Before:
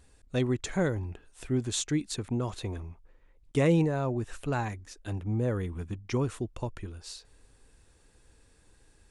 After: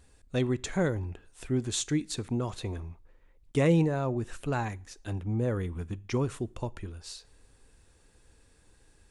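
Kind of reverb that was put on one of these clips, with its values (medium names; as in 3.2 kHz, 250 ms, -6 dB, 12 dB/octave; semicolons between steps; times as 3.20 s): two-slope reverb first 0.44 s, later 1.6 s, from -26 dB, DRR 19.5 dB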